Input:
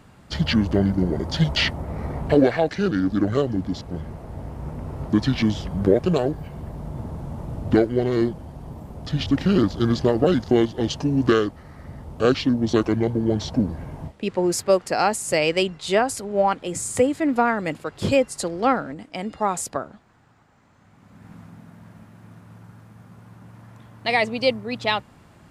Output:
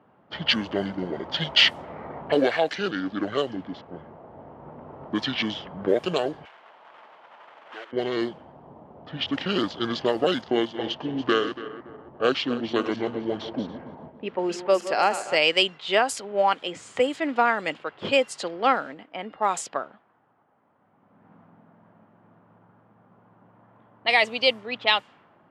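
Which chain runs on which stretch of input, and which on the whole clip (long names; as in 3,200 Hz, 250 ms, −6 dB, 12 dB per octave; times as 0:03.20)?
0:06.45–0:07.93: one scale factor per block 3 bits + high-pass filter 980 Hz + downward compressor 2 to 1, threshold −36 dBFS
0:10.41–0:15.36: feedback delay that plays each chunk backwards 142 ms, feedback 63%, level −11.5 dB + high-shelf EQ 3,200 Hz −8 dB
whole clip: meter weighting curve A; low-pass that shuts in the quiet parts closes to 820 Hz, open at −19.5 dBFS; parametric band 3,100 Hz +7 dB 0.4 octaves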